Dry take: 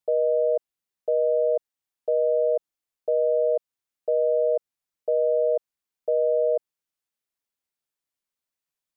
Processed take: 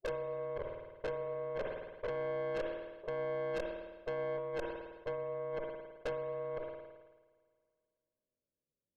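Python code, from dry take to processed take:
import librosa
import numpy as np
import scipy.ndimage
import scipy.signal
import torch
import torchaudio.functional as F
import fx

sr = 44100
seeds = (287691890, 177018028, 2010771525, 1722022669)

y = fx.spec_steps(x, sr, hold_ms=50)
y = scipy.signal.sosfilt(scipy.signal.ellip(4, 1.0, 40, 580.0, 'lowpass', fs=sr, output='sos'), y)
y = fx.spec_gate(y, sr, threshold_db=-15, keep='strong')
y = fx.highpass(y, sr, hz=410.0, slope=6, at=(2.09, 4.38))
y = fx.over_compress(y, sr, threshold_db=-32.0, ratio=-0.5)
y = fx.tube_stage(y, sr, drive_db=38.0, bias=0.75)
y = fx.rev_spring(y, sr, rt60_s=2.2, pass_ms=(53,), chirp_ms=80, drr_db=9.5)
y = fx.sustainer(y, sr, db_per_s=46.0)
y = F.gain(torch.from_numpy(y), 4.0).numpy()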